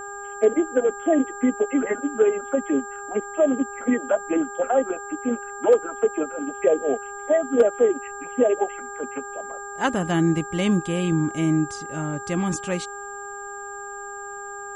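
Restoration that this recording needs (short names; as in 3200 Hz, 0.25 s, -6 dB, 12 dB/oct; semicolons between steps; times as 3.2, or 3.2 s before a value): clip repair -8 dBFS; de-hum 403.8 Hz, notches 4; notch 7400 Hz, Q 30; expander -28 dBFS, range -21 dB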